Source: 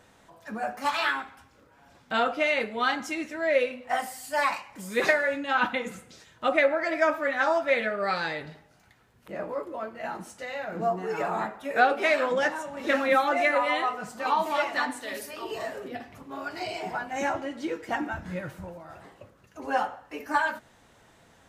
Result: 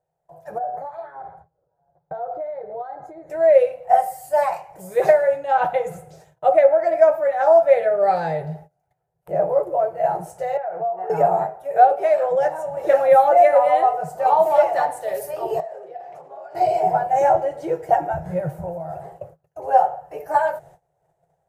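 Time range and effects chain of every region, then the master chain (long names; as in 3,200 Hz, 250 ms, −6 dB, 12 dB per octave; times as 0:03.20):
0:00.58–0:03.30: downward compressor 8 to 1, threshold −38 dBFS + moving average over 16 samples
0:10.57–0:11.10: three-way crossover with the lows and the highs turned down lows −20 dB, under 520 Hz, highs −16 dB, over 2,700 Hz + downward compressor 10 to 1, threshold −37 dBFS
0:15.60–0:16.55: downward compressor 16 to 1, threshold −43 dBFS + band-pass filter 380–6,100 Hz
whole clip: noise gate −54 dBFS, range −23 dB; drawn EQ curve 110 Hz 0 dB, 160 Hz +12 dB, 240 Hz −29 dB, 350 Hz 0 dB, 740 Hz +12 dB, 1,100 Hz −8 dB, 1,600 Hz −8 dB, 3,600 Hz −16 dB, 12,000 Hz 0 dB; automatic gain control gain up to 8.5 dB; level −1.5 dB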